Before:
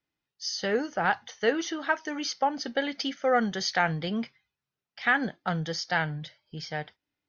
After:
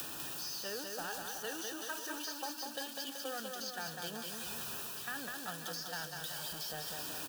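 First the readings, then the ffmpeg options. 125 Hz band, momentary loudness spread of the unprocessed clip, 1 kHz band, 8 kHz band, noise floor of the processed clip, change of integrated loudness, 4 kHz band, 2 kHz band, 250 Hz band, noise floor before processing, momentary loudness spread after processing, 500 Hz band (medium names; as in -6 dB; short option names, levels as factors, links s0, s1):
-17.5 dB, 11 LU, -15.0 dB, no reading, -46 dBFS, -11.0 dB, -6.5 dB, -14.0 dB, -16.0 dB, under -85 dBFS, 1 LU, -15.0 dB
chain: -filter_complex "[0:a]aeval=exprs='val(0)+0.5*0.0316*sgn(val(0))':c=same,agate=range=0.2:threshold=0.0562:ratio=16:detection=peak,crystalizer=i=7:c=0,lowshelf=f=120:g=-8.5,areverse,acompressor=threshold=0.0355:ratio=6,areverse,alimiter=level_in=1.26:limit=0.0631:level=0:latency=1:release=256,volume=0.794,acrossover=split=350|1700[s0][s1][s2];[s0]acompressor=threshold=0.00126:ratio=4[s3];[s1]acompressor=threshold=0.00447:ratio=4[s4];[s2]acompressor=threshold=0.00398:ratio=4[s5];[s3][s4][s5]amix=inputs=3:normalize=0,asuperstop=centerf=2100:order=4:qfactor=3.4,asplit=2[s6][s7];[s7]aecho=0:1:200|380|542|687.8|819:0.631|0.398|0.251|0.158|0.1[s8];[s6][s8]amix=inputs=2:normalize=0,volume=1.58"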